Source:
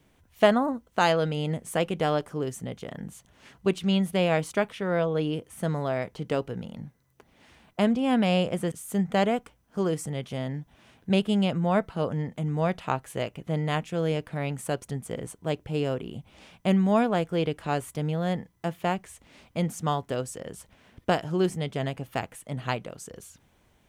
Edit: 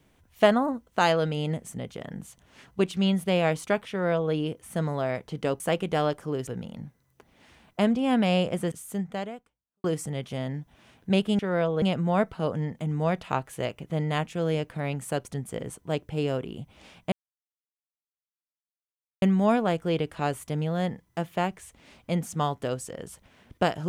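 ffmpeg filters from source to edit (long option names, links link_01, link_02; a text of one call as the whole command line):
ffmpeg -i in.wav -filter_complex "[0:a]asplit=8[link_01][link_02][link_03][link_04][link_05][link_06][link_07][link_08];[link_01]atrim=end=1.682[link_09];[link_02]atrim=start=2.548:end=6.472[link_10];[link_03]atrim=start=1.678:end=2.552[link_11];[link_04]atrim=start=6.468:end=9.84,asetpts=PTS-STARTPTS,afade=type=out:start_time=2.262:duration=1.11:curve=qua[link_12];[link_05]atrim=start=9.84:end=11.392,asetpts=PTS-STARTPTS,afade=type=in:duration=0.004:curve=hsin[link_13];[link_06]atrim=start=4.768:end=5.202[link_14];[link_07]atrim=start=11.388:end=16.69,asetpts=PTS-STARTPTS,afade=type=out:start_time=5.298:duration=0.004:curve=hsin,apad=pad_dur=2.1[link_15];[link_08]atrim=start=16.69,asetpts=PTS-STARTPTS,afade=type=in:duration=0.004:curve=hsin[link_16];[link_09][link_10]acrossfade=duration=0.004:curve1=hsin:curve2=hsin[link_17];[link_17][link_11]acrossfade=duration=0.004:curve1=hsin:curve2=hsin[link_18];[link_12][link_13]concat=n=2:v=0:a=1[link_19];[link_18][link_19]acrossfade=duration=0.004:curve1=hsin:curve2=hsin[link_20];[link_20][link_14]acrossfade=duration=0.004:curve1=hsin:curve2=hsin[link_21];[link_15][link_16]concat=n=2:v=0:a=1[link_22];[link_21][link_22]acrossfade=duration=0.004:curve1=hsin:curve2=hsin" out.wav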